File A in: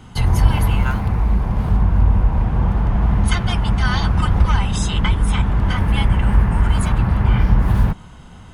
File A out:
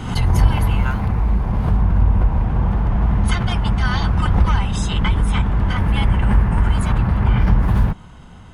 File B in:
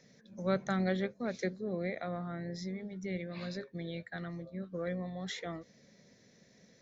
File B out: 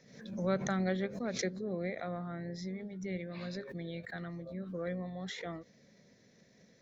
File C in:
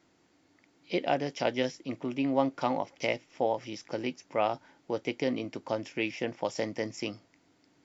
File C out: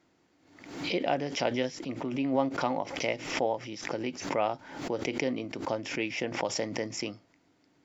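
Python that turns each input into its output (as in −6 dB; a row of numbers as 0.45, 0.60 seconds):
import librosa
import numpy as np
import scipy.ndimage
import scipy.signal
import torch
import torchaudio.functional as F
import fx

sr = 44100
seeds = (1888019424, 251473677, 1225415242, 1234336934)

y = fx.high_shelf(x, sr, hz=4700.0, db=-4.5)
y = fx.pre_swell(y, sr, db_per_s=73.0)
y = y * 10.0 ** (-1.0 / 20.0)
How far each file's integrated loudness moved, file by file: −0.5, −0.5, +0.5 LU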